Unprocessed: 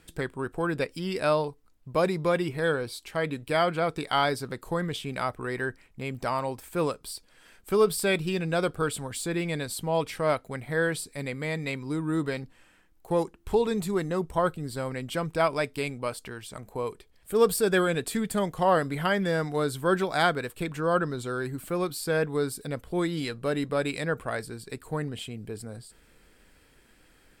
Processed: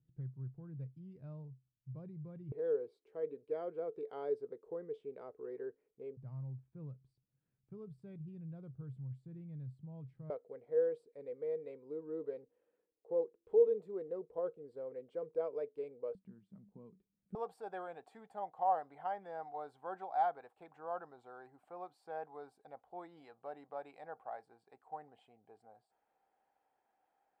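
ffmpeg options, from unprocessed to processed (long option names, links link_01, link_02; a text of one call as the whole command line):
ffmpeg -i in.wav -af "asetnsamples=nb_out_samples=441:pad=0,asendcmd='2.52 bandpass f 440;6.17 bandpass f 130;10.3 bandpass f 470;16.15 bandpass f 190;17.35 bandpass f 780',bandpass=frequency=130:width_type=q:width=11:csg=0" out.wav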